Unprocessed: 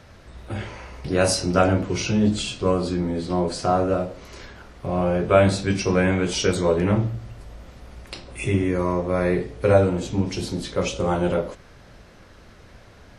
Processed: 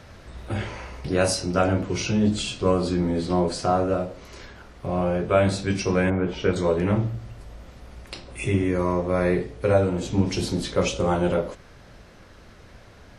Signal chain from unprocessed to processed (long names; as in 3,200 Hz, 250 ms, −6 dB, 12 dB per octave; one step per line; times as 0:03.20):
0:06.09–0:06.55: low-pass filter 1,100 Hz → 2,600 Hz 12 dB per octave
speech leveller within 3 dB 0.5 s
level −1 dB